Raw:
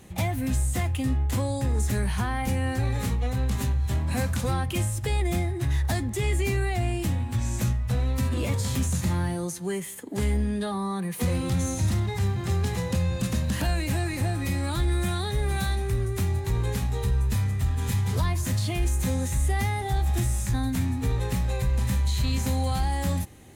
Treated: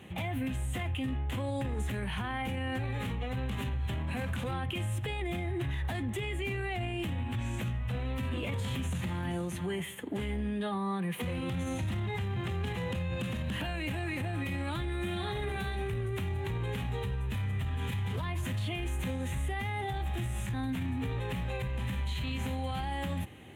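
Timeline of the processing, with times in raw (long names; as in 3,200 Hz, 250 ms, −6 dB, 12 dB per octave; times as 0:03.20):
0:08.59–0:09.33: delay throw 480 ms, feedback 15%, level −12.5 dB
0:14.97–0:15.49: thrown reverb, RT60 0.85 s, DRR 0.5 dB
whole clip: high-pass filter 85 Hz 12 dB per octave; high shelf with overshoot 3,900 Hz −8.5 dB, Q 3; brickwall limiter −26.5 dBFS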